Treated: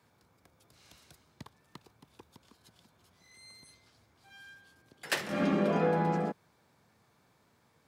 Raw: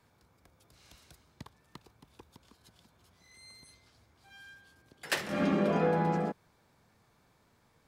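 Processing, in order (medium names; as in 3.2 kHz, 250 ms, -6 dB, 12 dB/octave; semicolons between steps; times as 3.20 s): high-pass 88 Hz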